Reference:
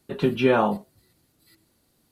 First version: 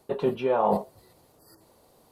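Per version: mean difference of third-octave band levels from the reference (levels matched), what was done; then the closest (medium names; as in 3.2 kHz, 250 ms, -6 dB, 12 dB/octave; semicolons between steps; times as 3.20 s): 5.5 dB: time-frequency box 1.39–1.61 s, 1.9–4.4 kHz -30 dB; high-order bell 680 Hz +11.5 dB; reverse; compression 10:1, threshold -24 dBFS, peak gain reduction 18 dB; reverse; trim +3.5 dB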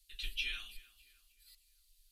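19.5 dB: inverse Chebyshev band-stop 100–970 Hz, stop band 60 dB; tilt shelf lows +9 dB; tape echo 305 ms, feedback 50%, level -18 dB, low-pass 2.9 kHz; trim +7 dB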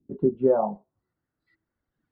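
11.0 dB: band-stop 2.4 kHz, Q 9.8; reverb removal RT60 1.6 s; low-pass sweep 270 Hz -> 1.6 kHz, 0.05–1.21 s; trim -5.5 dB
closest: first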